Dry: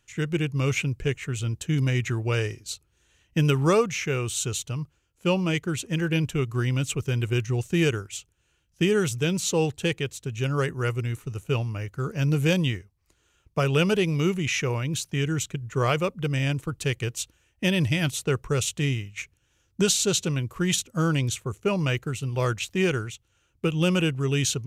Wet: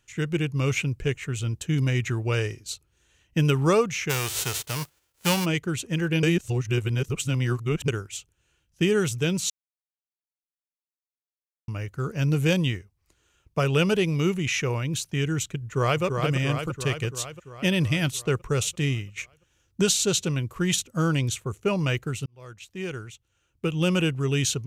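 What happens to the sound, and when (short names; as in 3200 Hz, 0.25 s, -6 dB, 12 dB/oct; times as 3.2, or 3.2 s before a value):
4.09–5.44 spectral whitening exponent 0.3
6.23–7.88 reverse
9.5–11.68 mute
15.62–16.03 echo throw 0.34 s, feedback 65%, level -4.5 dB
22.26–23.99 fade in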